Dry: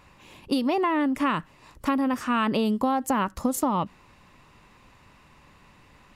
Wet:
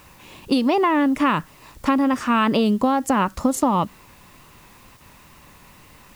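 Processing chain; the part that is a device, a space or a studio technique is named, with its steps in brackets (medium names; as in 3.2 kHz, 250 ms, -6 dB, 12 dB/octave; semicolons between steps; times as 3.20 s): 2.59–3.16 s: band-stop 910 Hz, Q 5.4; worn cassette (low-pass 9.6 kHz; wow and flutter; level dips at 4.97 s, 34 ms -7 dB; white noise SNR 33 dB); trim +5.5 dB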